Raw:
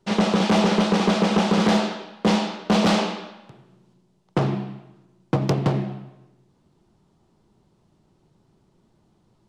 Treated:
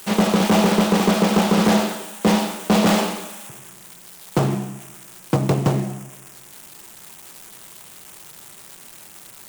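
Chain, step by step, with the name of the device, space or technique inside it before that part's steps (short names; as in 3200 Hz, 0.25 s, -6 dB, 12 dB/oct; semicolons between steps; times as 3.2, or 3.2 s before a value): budget class-D amplifier (switching dead time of 0.12 ms; switching spikes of -24.5 dBFS); gain +2.5 dB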